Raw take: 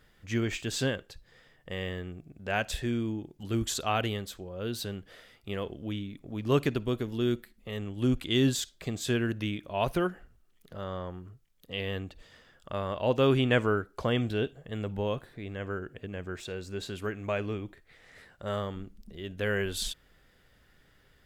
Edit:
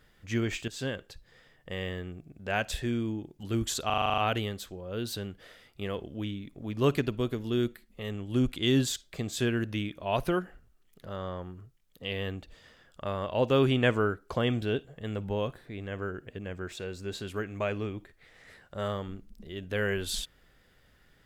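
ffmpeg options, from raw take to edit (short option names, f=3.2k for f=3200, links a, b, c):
-filter_complex "[0:a]asplit=10[a][b][c][d][e][f][g][h][i][j];[a]atrim=end=0.68,asetpts=PTS-STARTPTS,afade=t=out:st=0.676:d=0.004:c=hsin:silence=0.223872[k];[b]atrim=start=0.68:end=3.902,asetpts=PTS-STARTPTS,afade=t=in:d=0.38:silence=0.223872[l];[c]atrim=start=3.858:end=3.902[m];[d]atrim=start=3.858:end=3.902[n];[e]atrim=start=3.858:end=3.902[o];[f]atrim=start=3.858:end=3.902[p];[g]atrim=start=3.858:end=3.902[q];[h]atrim=start=3.858:end=3.902[r];[i]atrim=start=3.858:end=3.902[s];[j]atrim=start=3.858[t];[k][l]concat=n=2:v=0:a=1[u];[u][m]acrossfade=d=0.004:c1=hsin:c2=hsin[v];[v][n]acrossfade=d=0.004:c1=hsin:c2=hsin[w];[w][o]acrossfade=d=0.004:c1=hsin:c2=hsin[x];[x][p]acrossfade=d=0.004:c1=hsin:c2=hsin[y];[y][q]acrossfade=d=0.004:c1=hsin:c2=hsin[z];[z][r]acrossfade=d=0.004:c1=hsin:c2=hsin[aa];[aa][s]acrossfade=d=0.004:c1=hsin:c2=hsin[ab];[ab][t]acrossfade=d=0.004:c1=hsin:c2=hsin"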